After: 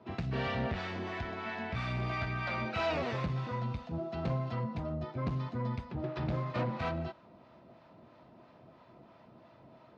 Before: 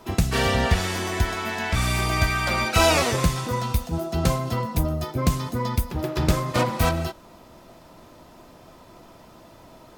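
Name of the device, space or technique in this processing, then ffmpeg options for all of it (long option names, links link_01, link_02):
guitar amplifier with harmonic tremolo: -filter_complex "[0:a]acrossover=split=670[link_01][link_02];[link_01]aeval=exprs='val(0)*(1-0.5/2+0.5/2*cos(2*PI*3*n/s))':channel_layout=same[link_03];[link_02]aeval=exprs='val(0)*(1-0.5/2-0.5/2*cos(2*PI*3*n/s))':channel_layout=same[link_04];[link_03][link_04]amix=inputs=2:normalize=0,asoftclip=type=tanh:threshold=-20dB,highpass=84,equalizer=frequency=130:width_type=q:width=4:gain=6,equalizer=frequency=220:width_type=q:width=4:gain=4,equalizer=frequency=640:width_type=q:width=4:gain=3,equalizer=frequency=3300:width_type=q:width=4:gain=-4,lowpass=frequency=3800:width=0.5412,lowpass=frequency=3800:width=1.3066,volume=-8dB"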